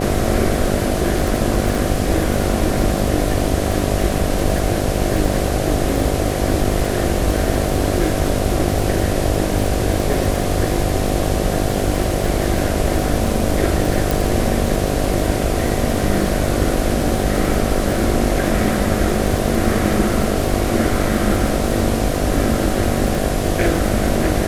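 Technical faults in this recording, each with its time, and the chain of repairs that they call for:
buzz 50 Hz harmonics 15 -22 dBFS
crackle 41 per s -20 dBFS
14.11 s: pop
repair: de-click; de-hum 50 Hz, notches 15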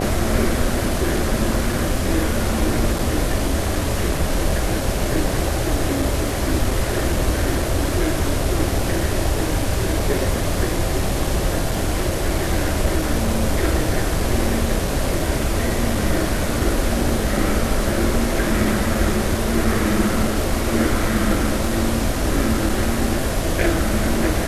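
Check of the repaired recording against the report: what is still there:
nothing left

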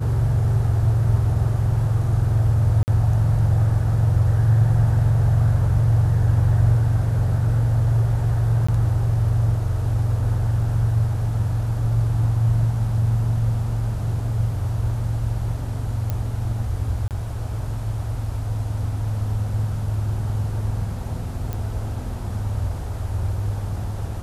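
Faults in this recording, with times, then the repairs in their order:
2.83–2.88 s: dropout 49 ms
8.67–8.69 s: dropout 15 ms
16.10 s: pop -13 dBFS
17.08–17.11 s: dropout 28 ms
21.53 s: pop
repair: de-click; interpolate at 2.83 s, 49 ms; interpolate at 8.67 s, 15 ms; interpolate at 17.08 s, 28 ms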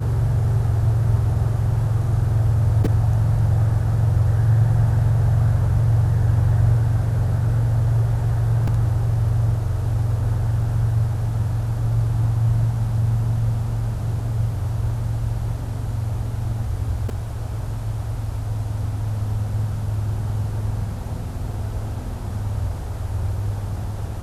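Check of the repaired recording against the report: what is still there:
nothing left

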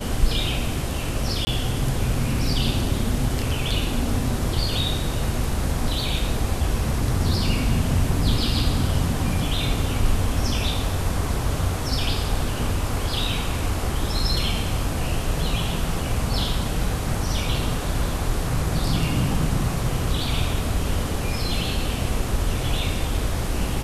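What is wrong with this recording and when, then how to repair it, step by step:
1.45–1.47 s: dropout 20 ms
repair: interpolate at 1.45 s, 20 ms

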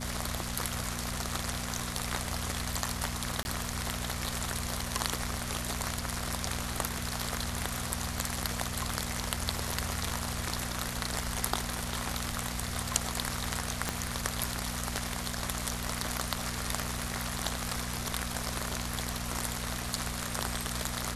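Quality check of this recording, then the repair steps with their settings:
hum 60 Hz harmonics 4 -39 dBFS
3.43–3.45 s: dropout 21 ms
13.89 s: pop -13 dBFS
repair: de-click; de-hum 60 Hz, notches 4; interpolate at 3.43 s, 21 ms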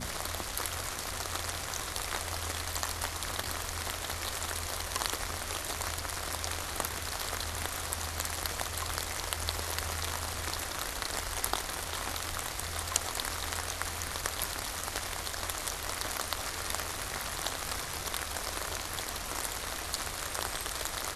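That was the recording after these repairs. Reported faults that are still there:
13.89 s: pop

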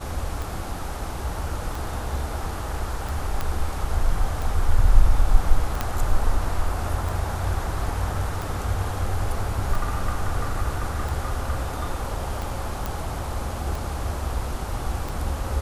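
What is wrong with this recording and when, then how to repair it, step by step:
tick 45 rpm
3.41 s: pop -12 dBFS
5.81 s: pop -9 dBFS
12.86 s: pop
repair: de-click

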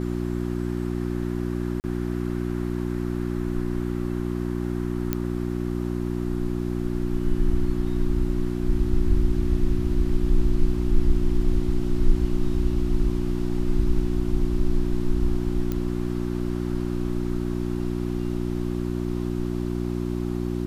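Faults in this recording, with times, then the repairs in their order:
hum 60 Hz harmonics 6 -27 dBFS
1.80–1.84 s: dropout 39 ms
5.13 s: pop -10 dBFS
15.72 s: pop -15 dBFS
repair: de-click; de-hum 60 Hz, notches 6; interpolate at 1.80 s, 39 ms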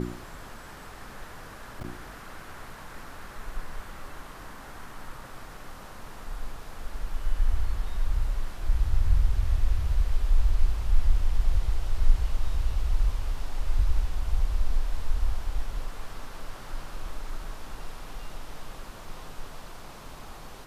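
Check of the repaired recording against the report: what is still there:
nothing left

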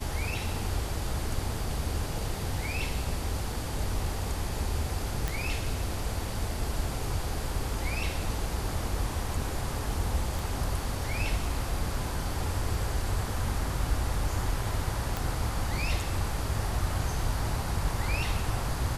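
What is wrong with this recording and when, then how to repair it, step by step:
5.28 s: pop
10.39 s: pop
15.17 s: pop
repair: de-click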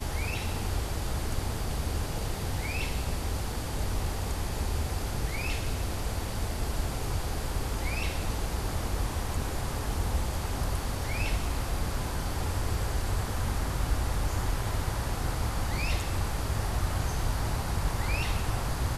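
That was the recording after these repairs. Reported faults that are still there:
10.39 s: pop

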